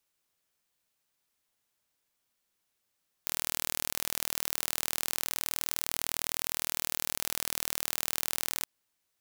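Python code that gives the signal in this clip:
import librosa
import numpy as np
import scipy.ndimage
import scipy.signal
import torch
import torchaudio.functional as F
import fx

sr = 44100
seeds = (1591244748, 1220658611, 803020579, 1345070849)

y = 10.0 ** (-4.0 / 20.0) * (np.mod(np.arange(round(5.37 * sr)), round(sr / 39.7)) == 0)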